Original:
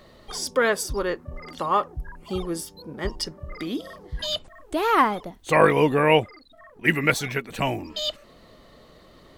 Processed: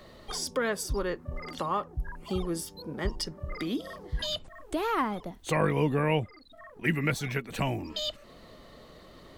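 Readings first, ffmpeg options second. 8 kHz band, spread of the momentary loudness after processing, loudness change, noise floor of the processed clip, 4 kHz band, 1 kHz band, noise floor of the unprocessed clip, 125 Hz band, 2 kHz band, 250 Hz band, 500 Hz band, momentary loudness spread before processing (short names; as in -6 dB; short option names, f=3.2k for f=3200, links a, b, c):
-5.0 dB, 12 LU, -7.5 dB, -52 dBFS, -5.5 dB, -9.5 dB, -52 dBFS, -1.0 dB, -9.0 dB, -4.0 dB, -8.0 dB, 15 LU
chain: -filter_complex "[0:a]acrossover=split=220[a][b];[b]acompressor=threshold=-34dB:ratio=2[c];[a][c]amix=inputs=2:normalize=0"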